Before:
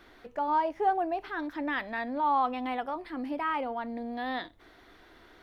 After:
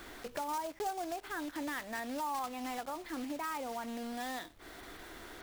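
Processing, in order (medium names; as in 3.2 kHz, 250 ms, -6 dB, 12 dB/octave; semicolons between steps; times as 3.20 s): block-companded coder 3-bit; compression 3:1, threshold -47 dBFS, peak gain reduction 19 dB; trim +6 dB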